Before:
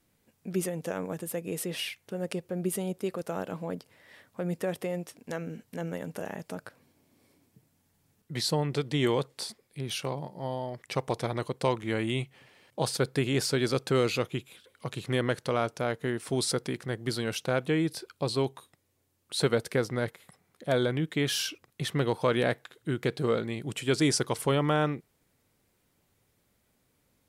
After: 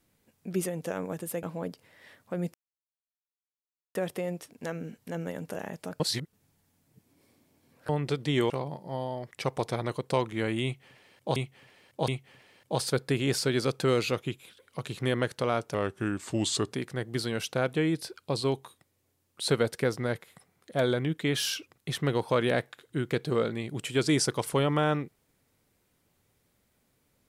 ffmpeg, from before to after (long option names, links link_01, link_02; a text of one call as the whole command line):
ffmpeg -i in.wav -filter_complex "[0:a]asplit=10[link_01][link_02][link_03][link_04][link_05][link_06][link_07][link_08][link_09][link_10];[link_01]atrim=end=1.432[link_11];[link_02]atrim=start=3.498:end=4.61,asetpts=PTS-STARTPTS,afade=type=out:start_time=1.108:duration=0.004:curve=hsin,apad=pad_dur=1.41[link_12];[link_03]atrim=start=4.61:end=6.662,asetpts=PTS-STARTPTS,afade=type=in:duration=0.004:curve=hsin[link_13];[link_04]atrim=start=6.658:end=8.552,asetpts=PTS-STARTPTS,areverse[link_14];[link_05]atrim=start=8.548:end=9.162[link_15];[link_06]atrim=start=10.008:end=12.872[link_16];[link_07]atrim=start=12.148:end=12.872[link_17];[link_08]atrim=start=12.148:end=15.814[link_18];[link_09]atrim=start=15.81:end=16.64,asetpts=PTS-STARTPTS,asetrate=37485,aresample=44100,atrim=end_sample=43062,asetpts=PTS-STARTPTS[link_19];[link_10]atrim=start=16.636[link_20];[link_12][link_13]concat=n=2:v=0:a=1[link_21];[link_11][link_21]acrossfade=duration=0.004:curve1=hsin:curve2=hsin[link_22];[link_22][link_14]acrossfade=duration=0.004:curve1=hsin:curve2=hsin[link_23];[link_23][link_15]acrossfade=duration=0.004:curve1=hsin:curve2=hsin[link_24];[link_24][link_16]acrossfade=duration=0.004:curve1=hsin:curve2=hsin[link_25];[link_25][link_17]acrossfade=duration=0.004:curve1=hsin:curve2=hsin[link_26];[link_26][link_18]acrossfade=duration=0.004:curve1=hsin:curve2=hsin[link_27];[link_27][link_19]acrossfade=duration=0.004:curve1=hsin:curve2=hsin[link_28];[link_28][link_20]acrossfade=duration=0.004:curve1=hsin:curve2=hsin" out.wav